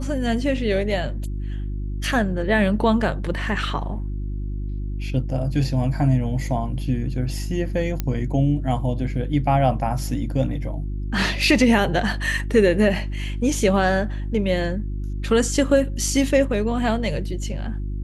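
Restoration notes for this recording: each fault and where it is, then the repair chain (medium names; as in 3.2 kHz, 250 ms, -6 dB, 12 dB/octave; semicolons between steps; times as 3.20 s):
hum 50 Hz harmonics 7 -27 dBFS
8.00 s: pop -10 dBFS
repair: de-click; de-hum 50 Hz, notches 7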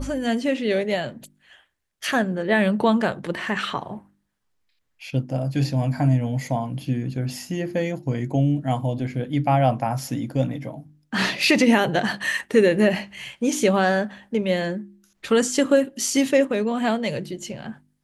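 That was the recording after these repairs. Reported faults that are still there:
nothing left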